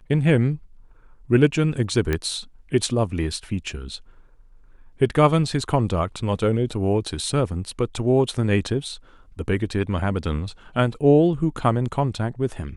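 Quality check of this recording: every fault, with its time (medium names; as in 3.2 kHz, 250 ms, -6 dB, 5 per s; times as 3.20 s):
2.13 s: pop -10 dBFS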